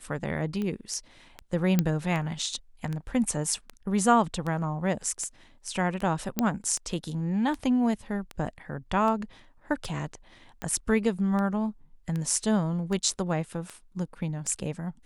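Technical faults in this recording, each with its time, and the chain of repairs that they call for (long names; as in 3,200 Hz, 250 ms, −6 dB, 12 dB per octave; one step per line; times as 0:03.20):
scratch tick 78 rpm −21 dBFS
0:01.79: click −9 dBFS
0:06.39: click −10 dBFS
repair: click removal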